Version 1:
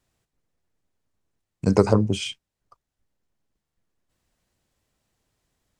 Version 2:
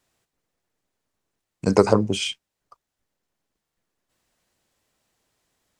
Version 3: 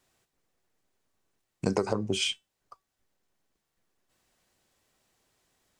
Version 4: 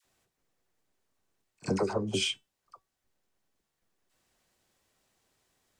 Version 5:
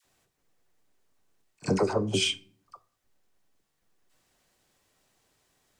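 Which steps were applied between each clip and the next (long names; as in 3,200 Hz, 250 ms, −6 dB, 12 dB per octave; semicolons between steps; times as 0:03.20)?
low-shelf EQ 180 Hz −11.5 dB; level +4 dB
downward compressor 16 to 1, threshold −23 dBFS, peak gain reduction 14.5 dB; tuned comb filter 380 Hz, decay 0.21 s, harmonics all, mix 50%; level +5.5 dB
all-pass dispersion lows, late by 50 ms, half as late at 860 Hz; echo ahead of the sound 58 ms −24 dB; level −1.5 dB
rectangular room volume 560 cubic metres, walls furnished, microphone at 0.36 metres; level +3.5 dB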